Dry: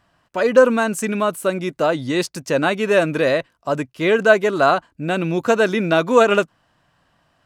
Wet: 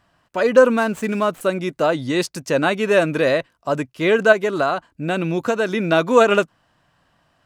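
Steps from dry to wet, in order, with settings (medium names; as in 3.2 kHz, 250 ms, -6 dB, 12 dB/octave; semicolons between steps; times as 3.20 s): 0.77–1.41 s: median filter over 9 samples; 4.32–5.88 s: compression 5:1, threshold -16 dBFS, peak gain reduction 6 dB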